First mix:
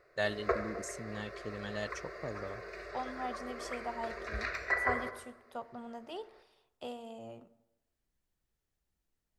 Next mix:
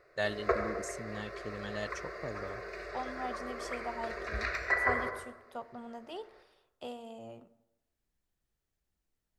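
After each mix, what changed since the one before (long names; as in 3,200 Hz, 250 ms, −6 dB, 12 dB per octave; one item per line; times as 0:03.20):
background: send +6.5 dB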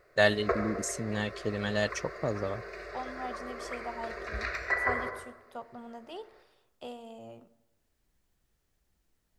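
first voice +9.5 dB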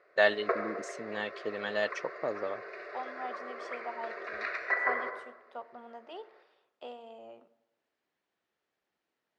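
master: add band-pass filter 380–3,300 Hz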